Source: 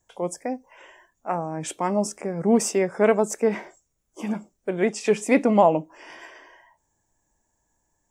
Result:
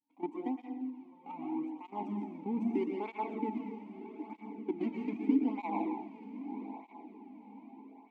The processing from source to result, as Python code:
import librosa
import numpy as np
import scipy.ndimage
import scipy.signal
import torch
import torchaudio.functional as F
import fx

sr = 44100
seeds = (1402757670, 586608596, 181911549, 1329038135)

p1 = scipy.signal.medfilt(x, 25)
p2 = fx.rider(p1, sr, range_db=4, speed_s=0.5)
p3 = p1 + F.gain(torch.from_numpy(p2), 1.5).numpy()
p4 = fx.peak_eq(p3, sr, hz=270.0, db=11.5, octaves=0.29)
p5 = fx.level_steps(p4, sr, step_db=15)
p6 = fx.vowel_filter(p5, sr, vowel='u')
p7 = fx.peak_eq(p6, sr, hz=83.0, db=-10.5, octaves=2.1)
p8 = p7 + fx.echo_diffused(p7, sr, ms=1049, feedback_pct=41, wet_db=-13, dry=0)
p9 = fx.rev_plate(p8, sr, seeds[0], rt60_s=0.88, hf_ratio=0.9, predelay_ms=105, drr_db=1.0)
y = fx.flanger_cancel(p9, sr, hz=0.8, depth_ms=3.1)